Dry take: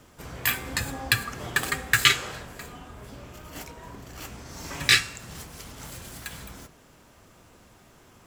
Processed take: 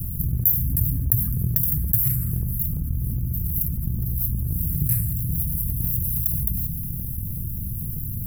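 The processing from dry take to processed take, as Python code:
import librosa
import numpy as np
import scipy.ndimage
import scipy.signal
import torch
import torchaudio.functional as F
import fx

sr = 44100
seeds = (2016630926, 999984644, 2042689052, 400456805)

y = scipy.signal.sosfilt(scipy.signal.cheby2(4, 50, [390.0, 6800.0], 'bandstop', fs=sr, output='sos'), x)
y = fx.low_shelf(y, sr, hz=370.0, db=-8.5)
y = fx.transient(y, sr, attack_db=8, sustain_db=4)
y = fx.env_flatten(y, sr, amount_pct=70)
y = F.gain(torch.from_numpy(y), 6.5).numpy()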